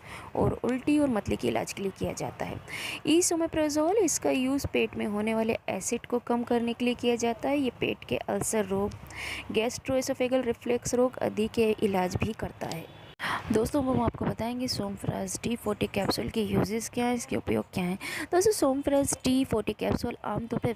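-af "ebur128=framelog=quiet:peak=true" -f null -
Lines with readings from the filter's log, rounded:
Integrated loudness:
  I:         -28.8 LUFS
  Threshold: -38.8 LUFS
Loudness range:
  LRA:         2.6 LU
  Threshold: -48.9 LUFS
  LRA low:   -30.2 LUFS
  LRA high:  -27.5 LUFS
True peak:
  Peak:      -14.4 dBFS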